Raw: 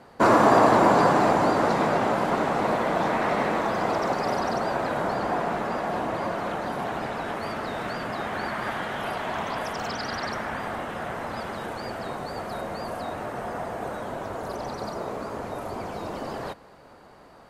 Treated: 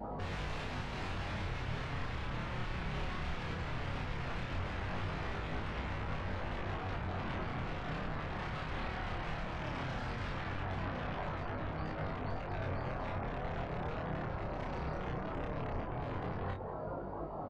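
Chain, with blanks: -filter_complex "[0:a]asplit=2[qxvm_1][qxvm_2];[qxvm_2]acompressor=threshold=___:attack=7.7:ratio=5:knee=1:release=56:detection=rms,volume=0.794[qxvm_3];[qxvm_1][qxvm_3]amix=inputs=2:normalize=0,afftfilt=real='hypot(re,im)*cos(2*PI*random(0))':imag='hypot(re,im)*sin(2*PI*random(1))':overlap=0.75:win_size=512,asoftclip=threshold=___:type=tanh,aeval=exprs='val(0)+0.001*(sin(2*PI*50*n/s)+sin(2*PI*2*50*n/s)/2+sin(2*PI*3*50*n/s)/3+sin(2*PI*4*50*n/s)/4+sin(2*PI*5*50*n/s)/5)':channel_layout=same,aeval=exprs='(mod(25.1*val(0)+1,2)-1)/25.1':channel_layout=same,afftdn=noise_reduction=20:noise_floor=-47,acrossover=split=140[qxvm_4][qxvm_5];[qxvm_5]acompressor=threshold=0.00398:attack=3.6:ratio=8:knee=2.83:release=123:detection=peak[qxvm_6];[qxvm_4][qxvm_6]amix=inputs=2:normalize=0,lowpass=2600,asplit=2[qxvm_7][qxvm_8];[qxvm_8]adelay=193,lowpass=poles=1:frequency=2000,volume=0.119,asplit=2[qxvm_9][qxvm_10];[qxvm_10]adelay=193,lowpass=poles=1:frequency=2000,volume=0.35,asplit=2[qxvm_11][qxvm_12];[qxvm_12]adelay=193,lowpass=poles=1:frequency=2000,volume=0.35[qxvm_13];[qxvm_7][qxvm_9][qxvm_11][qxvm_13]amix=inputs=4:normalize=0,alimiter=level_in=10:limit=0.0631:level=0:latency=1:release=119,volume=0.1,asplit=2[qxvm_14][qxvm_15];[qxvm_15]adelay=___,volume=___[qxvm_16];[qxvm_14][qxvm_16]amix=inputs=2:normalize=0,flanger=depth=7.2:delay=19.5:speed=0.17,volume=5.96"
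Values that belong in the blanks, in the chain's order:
0.0251, 0.0794, 32, 0.631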